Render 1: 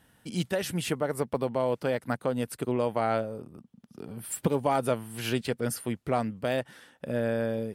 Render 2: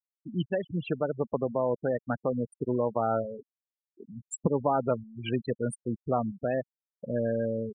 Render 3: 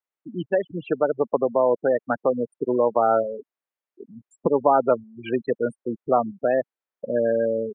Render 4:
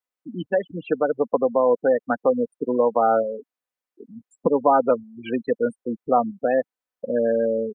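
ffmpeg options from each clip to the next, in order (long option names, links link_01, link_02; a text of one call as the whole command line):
ffmpeg -i in.wav -af "afftfilt=real='re*gte(hypot(re,im),0.0631)':imag='im*gte(hypot(re,im),0.0631)':win_size=1024:overlap=0.75" out.wav
ffmpeg -i in.wav -filter_complex "[0:a]acrossover=split=2600[link_01][link_02];[link_02]acompressor=threshold=-52dB:ratio=4:attack=1:release=60[link_03];[link_01][link_03]amix=inputs=2:normalize=0,acrossover=split=270 2600:gain=0.141 1 0.178[link_04][link_05][link_06];[link_04][link_05][link_06]amix=inputs=3:normalize=0,volume=9dB" out.wav
ffmpeg -i in.wav -af "aecho=1:1:4:0.43" out.wav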